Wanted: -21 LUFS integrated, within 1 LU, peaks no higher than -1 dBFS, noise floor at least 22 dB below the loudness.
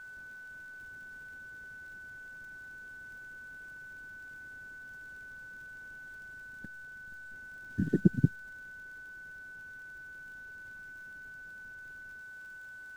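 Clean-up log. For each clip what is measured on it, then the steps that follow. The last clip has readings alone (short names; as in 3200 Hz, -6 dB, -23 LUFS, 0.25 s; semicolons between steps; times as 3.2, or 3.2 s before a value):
ticks 30/s; steady tone 1500 Hz; tone level -45 dBFS; loudness -40.5 LUFS; peak -9.0 dBFS; loudness target -21.0 LUFS
-> de-click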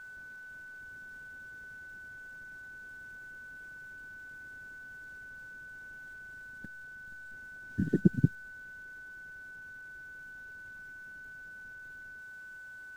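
ticks 0.31/s; steady tone 1500 Hz; tone level -45 dBFS
-> notch 1500 Hz, Q 30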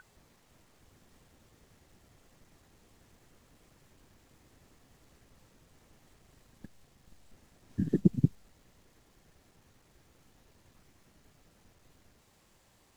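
steady tone none; loudness -30.5 LUFS; peak -8.5 dBFS; loudness target -21.0 LUFS
-> gain +9.5 dB; limiter -1 dBFS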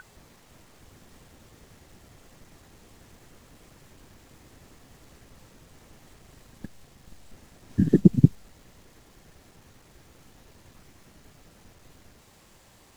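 loudness -21.5 LUFS; peak -1.0 dBFS; noise floor -56 dBFS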